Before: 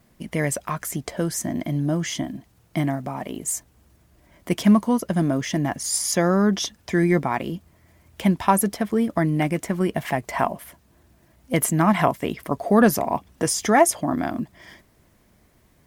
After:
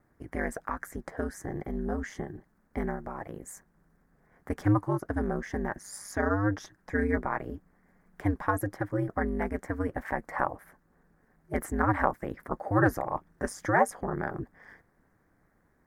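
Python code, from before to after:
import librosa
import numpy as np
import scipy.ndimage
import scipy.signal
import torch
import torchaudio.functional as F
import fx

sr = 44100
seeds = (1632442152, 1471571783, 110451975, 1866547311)

y = x * np.sin(2.0 * np.pi * 100.0 * np.arange(len(x)) / sr)
y = fx.high_shelf_res(y, sr, hz=2200.0, db=-9.5, q=3.0)
y = y * librosa.db_to_amplitude(-6.0)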